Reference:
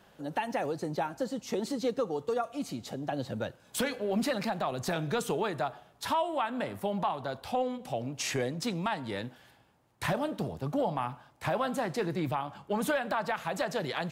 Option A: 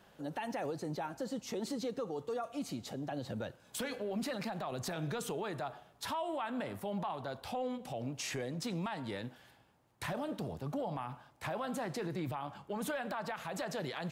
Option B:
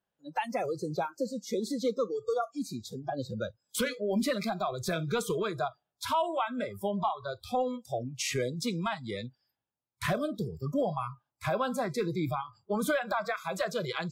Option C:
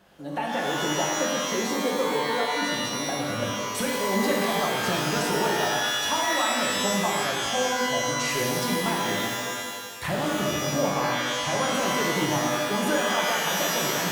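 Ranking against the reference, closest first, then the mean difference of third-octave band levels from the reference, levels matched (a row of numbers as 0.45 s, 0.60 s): A, B, C; 2.5 dB, 8.0 dB, 12.0 dB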